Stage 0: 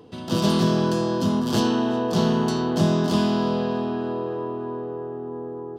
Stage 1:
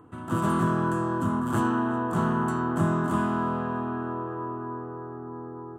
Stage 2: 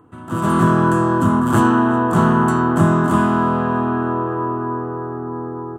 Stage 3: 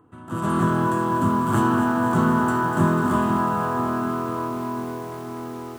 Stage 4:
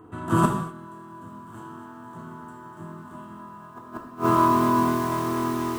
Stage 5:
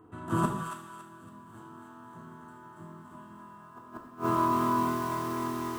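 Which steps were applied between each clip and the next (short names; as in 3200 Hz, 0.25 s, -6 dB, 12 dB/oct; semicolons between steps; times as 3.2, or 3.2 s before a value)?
EQ curve 130 Hz 0 dB, 200 Hz -8 dB, 310 Hz 0 dB, 450 Hz -12 dB, 830 Hz -3 dB, 1300 Hz +7 dB, 5100 Hz -29 dB, 7800 Hz -2 dB, 12000 Hz -7 dB
AGC gain up to 10 dB; gain +1.5 dB
lo-fi delay 0.247 s, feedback 80%, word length 6-bit, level -8.5 dB; gain -6 dB
flipped gate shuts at -15 dBFS, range -29 dB; non-linear reverb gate 0.28 s falling, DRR 0.5 dB; gain +6 dB
thin delay 0.279 s, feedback 34%, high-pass 1400 Hz, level -4 dB; gain -7.5 dB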